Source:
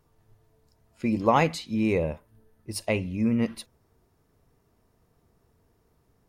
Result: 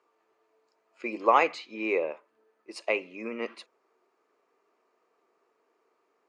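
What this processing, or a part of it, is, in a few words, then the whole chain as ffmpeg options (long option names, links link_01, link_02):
phone speaker on a table: -filter_complex "[0:a]highpass=frequency=360:width=0.5412,highpass=frequency=360:width=1.3066,equalizer=frequency=370:width_type=q:width=4:gain=3,equalizer=frequency=1200:width_type=q:width=4:gain=7,equalizer=frequency=2400:width_type=q:width=4:gain=6,equalizer=frequency=3600:width_type=q:width=4:gain=-5,equalizer=frequency=5500:width_type=q:width=4:gain=-7,lowpass=frequency=6600:width=0.5412,lowpass=frequency=6600:width=1.3066,asettb=1/sr,asplit=3[link_01][link_02][link_03];[link_01]atrim=end=1.524[link_04];[link_02]atrim=start=1.52:end=2.11,asetpts=PTS-STARTPTS,afade=type=in:duration=0.004:curve=qsin,afade=type=out:start_time=0.586:duration=0.004:curve=qsin,lowpass=6300[link_05];[link_03]atrim=start=2.106[link_06];[link_04][link_05]acrossfade=duration=0.004:curve1=hsin:curve2=qsin[link_07];[link_07][link_06]acrossfade=duration=0.004:curve1=qsin:curve2=hsin,volume=-1.5dB"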